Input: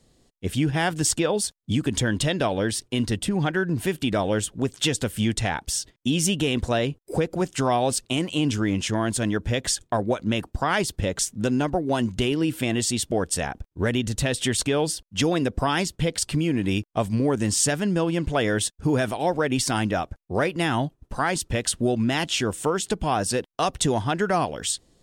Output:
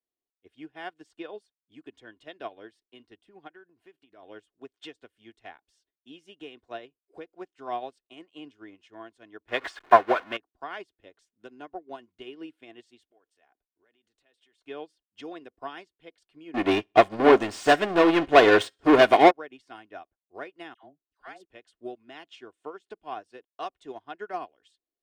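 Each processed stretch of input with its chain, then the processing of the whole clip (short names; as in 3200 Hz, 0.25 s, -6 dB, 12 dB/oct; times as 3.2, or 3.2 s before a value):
3.47–4.23 compressor, threshold -23 dBFS + notch 3600 Hz, Q 23
9.48–10.37 zero-crossing step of -23.5 dBFS + bell 1400 Hz +10.5 dB 2.1 oct
13.1–14.65 compressor 8:1, threshold -26 dBFS + bell 90 Hz -12 dB 2.8 oct
16.54–19.31 de-hum 266.8 Hz, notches 32 + sample leveller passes 5 + feedback echo 65 ms, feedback 36%, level -18 dB
20.74–21.45 dynamic EQ 1000 Hz, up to -8 dB, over -40 dBFS, Q 2.9 + dispersion lows, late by 95 ms, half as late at 1100 Hz
whole clip: three-band isolator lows -18 dB, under 280 Hz, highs -18 dB, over 4000 Hz; comb 2.8 ms, depth 39%; upward expander 2.5:1, over -34 dBFS; gain +2 dB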